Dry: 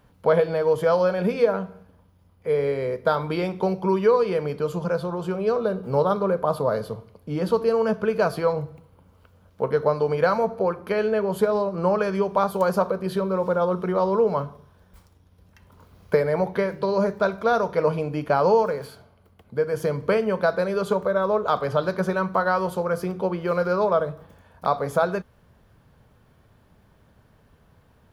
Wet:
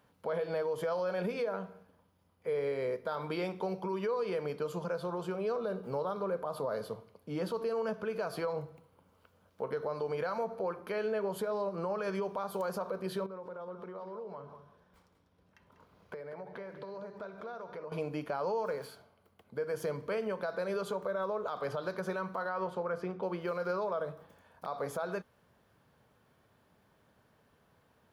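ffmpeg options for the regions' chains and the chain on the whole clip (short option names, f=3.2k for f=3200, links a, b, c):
-filter_complex "[0:a]asettb=1/sr,asplit=3[a][b][c];[a]atrim=end=13.264[d];[b]atrim=start=13.26:end=17.92,asetpts=PTS-STARTPTS,afade=t=in:d=0.004:c=qsin,afade=t=out:st=4.656:d=0.004:c=qsin,lowpass=f=3.2k:p=1,acompressor=threshold=-34dB:ratio=6:attack=3.2:release=140:knee=1:detection=peak,aecho=1:1:194:0.299,atrim=end_sample=205506[e];[c]atrim=start=17.916[f];[d][e]acrossfade=d=0.004:c1=hsin:c2=qsin[g];[g][f]acrossfade=d=0.004:c1=qsin:c2=hsin,asettb=1/sr,asplit=3[h][i][j];[h]atrim=end=22.494[k];[i]atrim=start=22.49:end=23.23,asetpts=PTS-STARTPTS,afade=t=in:d=0.004:c=qsin,afade=t=out:st=0.736:d=0.004:c=qsin,lowpass=2k,aemphasis=mode=production:type=75fm[l];[j]atrim=start=23.226[m];[k][l]acrossfade=d=0.004:c1=hsin:c2=qsin[n];[n][m]acrossfade=d=0.004:c1=qsin:c2=hsin,highpass=f=270:p=1,alimiter=limit=-20dB:level=0:latency=1:release=85,volume=-6dB"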